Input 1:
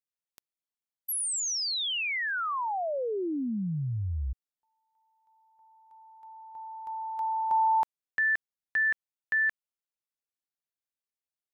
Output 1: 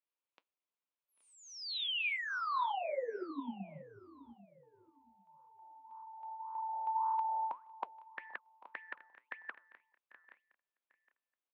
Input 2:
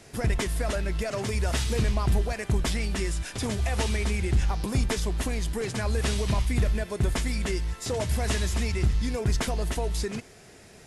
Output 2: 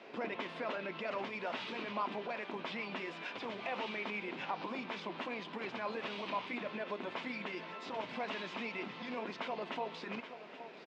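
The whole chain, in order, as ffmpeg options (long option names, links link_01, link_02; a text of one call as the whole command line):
ffmpeg -i in.wav -filter_complex "[0:a]afftfilt=real='re*lt(hypot(re,im),0.355)':imag='im*lt(hypot(re,im),0.355)':win_size=1024:overlap=0.75,asplit=2[link_01][link_02];[link_02]aecho=0:1:824:0.126[link_03];[link_01][link_03]amix=inputs=2:normalize=0,alimiter=level_in=3.5dB:limit=-24dB:level=0:latency=1:release=75,volume=-3.5dB,asplit=2[link_04][link_05];[link_05]aecho=0:1:794|1588:0.0944|0.0293[link_06];[link_04][link_06]amix=inputs=2:normalize=0,adynamicequalizer=threshold=0.00224:dfrequency=410:dqfactor=1.4:tfrequency=410:tqfactor=1.4:attack=5:release=100:ratio=0.417:range=2.5:mode=cutabove:tftype=bell,flanger=delay=1.4:depth=8.2:regen=-79:speed=1.8:shape=sinusoidal,highpass=frequency=240:width=0.5412,highpass=frequency=240:width=1.3066,equalizer=frequency=540:width_type=q:width=4:gain=4,equalizer=frequency=1000:width_type=q:width=4:gain=6,equalizer=frequency=1800:width_type=q:width=4:gain=-4,equalizer=frequency=2500:width_type=q:width=4:gain=3,lowpass=frequency=3400:width=0.5412,lowpass=frequency=3400:width=1.3066,volume=4dB" out.wav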